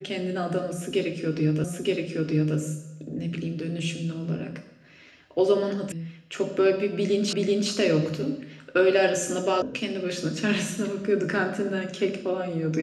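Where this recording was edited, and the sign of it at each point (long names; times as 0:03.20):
0:01.64: the same again, the last 0.92 s
0:05.92: cut off before it has died away
0:07.33: the same again, the last 0.38 s
0:09.62: cut off before it has died away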